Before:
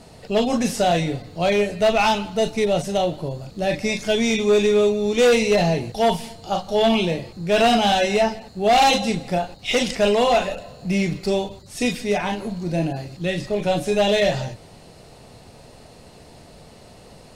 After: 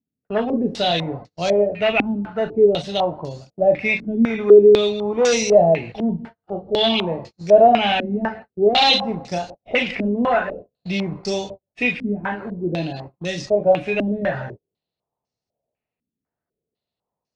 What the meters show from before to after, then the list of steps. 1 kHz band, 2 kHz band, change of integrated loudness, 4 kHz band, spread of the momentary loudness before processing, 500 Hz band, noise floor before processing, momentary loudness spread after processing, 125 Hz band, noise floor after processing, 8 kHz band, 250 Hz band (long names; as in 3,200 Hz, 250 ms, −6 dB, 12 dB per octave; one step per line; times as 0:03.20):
−0.5 dB, +1.0 dB, +2.0 dB, +1.5 dB, 10 LU, +2.5 dB, −46 dBFS, 15 LU, −2.5 dB, below −85 dBFS, −2.5 dB, 0.0 dB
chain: high-pass filter 73 Hz 6 dB per octave
noise gate −33 dBFS, range −40 dB
low-pass on a step sequencer 4 Hz 260–5,900 Hz
level −2.5 dB